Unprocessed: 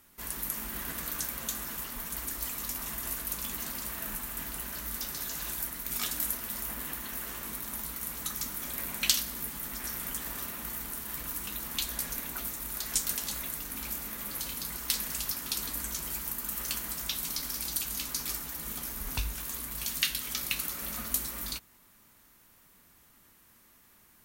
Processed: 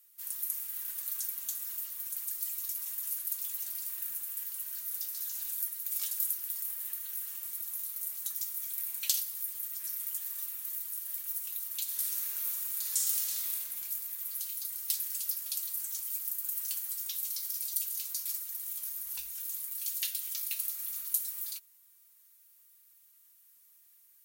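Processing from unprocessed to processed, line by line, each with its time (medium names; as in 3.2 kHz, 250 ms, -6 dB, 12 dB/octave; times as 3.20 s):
11.83–13.54 s: reverb throw, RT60 2.6 s, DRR -4.5 dB
16.04–19.94 s: band-stop 550 Hz, Q 5.3
whole clip: pre-emphasis filter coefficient 0.97; comb 5.2 ms, depth 52%; trim -4 dB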